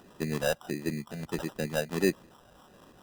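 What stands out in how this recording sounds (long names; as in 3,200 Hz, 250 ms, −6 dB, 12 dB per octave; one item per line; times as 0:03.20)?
phaser sweep stages 6, 1.5 Hz, lowest notch 320–1,500 Hz
aliases and images of a low sample rate 2,200 Hz, jitter 0%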